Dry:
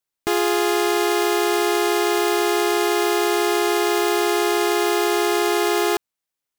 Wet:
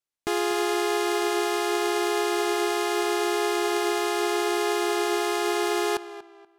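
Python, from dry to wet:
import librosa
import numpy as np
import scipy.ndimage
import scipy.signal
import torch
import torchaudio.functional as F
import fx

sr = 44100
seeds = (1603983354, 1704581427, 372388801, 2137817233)

p1 = scipy.signal.sosfilt(scipy.signal.butter(2, 12000.0, 'lowpass', fs=sr, output='sos'), x)
p2 = p1 + fx.echo_tape(p1, sr, ms=238, feedback_pct=31, wet_db=-12, lp_hz=3500.0, drive_db=15.0, wow_cents=38, dry=0)
y = p2 * 10.0 ** (-5.5 / 20.0)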